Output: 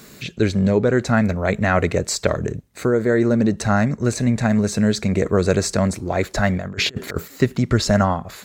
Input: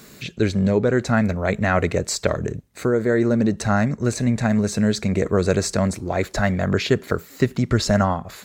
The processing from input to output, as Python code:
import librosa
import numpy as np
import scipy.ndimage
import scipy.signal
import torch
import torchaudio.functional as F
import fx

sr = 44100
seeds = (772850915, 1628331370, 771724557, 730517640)

y = fx.over_compress(x, sr, threshold_db=-26.0, ratio=-0.5, at=(6.56, 7.28))
y = y * 10.0 ** (1.5 / 20.0)